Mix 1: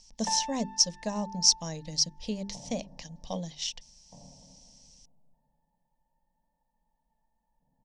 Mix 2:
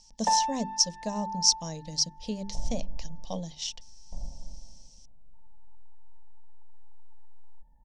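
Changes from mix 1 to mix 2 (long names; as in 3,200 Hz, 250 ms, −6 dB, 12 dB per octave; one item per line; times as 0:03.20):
speech: add parametric band 1,900 Hz −4.5 dB 1.1 octaves
first sound: add parametric band 640 Hz +9.5 dB 2.5 octaves
second sound: remove high-pass filter 110 Hz 24 dB per octave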